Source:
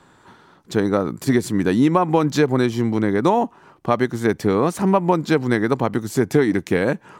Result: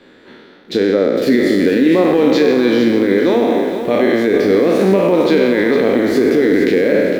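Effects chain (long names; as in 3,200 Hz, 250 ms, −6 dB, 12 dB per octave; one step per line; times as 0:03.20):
peak hold with a decay on every bin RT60 1.30 s
graphic EQ with 10 bands 125 Hz −9 dB, 250 Hz +10 dB, 500 Hz +12 dB, 1,000 Hz −10 dB, 2,000 Hz +10 dB, 4,000 Hz +9 dB, 8,000 Hz −11 dB
brickwall limiter −3.5 dBFS, peak gain reduction 10 dB
hum removal 71.51 Hz, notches 27
feedback echo at a low word length 457 ms, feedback 35%, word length 6 bits, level −9 dB
level −1 dB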